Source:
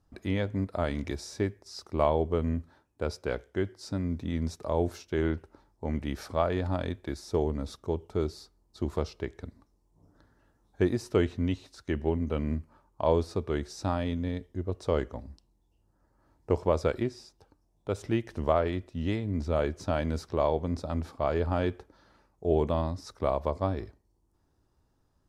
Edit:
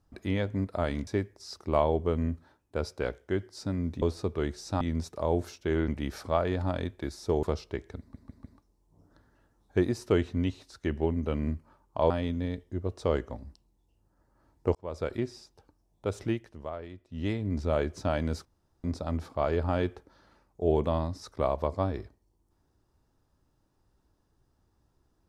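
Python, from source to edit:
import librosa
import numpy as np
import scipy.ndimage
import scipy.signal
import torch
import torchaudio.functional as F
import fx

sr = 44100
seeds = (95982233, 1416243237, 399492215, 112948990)

y = fx.edit(x, sr, fx.cut(start_s=1.07, length_s=0.26),
    fx.cut(start_s=5.35, length_s=0.58),
    fx.cut(start_s=7.48, length_s=1.44),
    fx.stutter(start_s=9.48, slice_s=0.15, count=4),
    fx.move(start_s=13.14, length_s=0.79, to_s=4.28),
    fx.fade_in_span(start_s=16.58, length_s=0.53),
    fx.fade_down_up(start_s=18.08, length_s=1.06, db=-13.0, fade_s=0.26),
    fx.room_tone_fill(start_s=20.28, length_s=0.39), tone=tone)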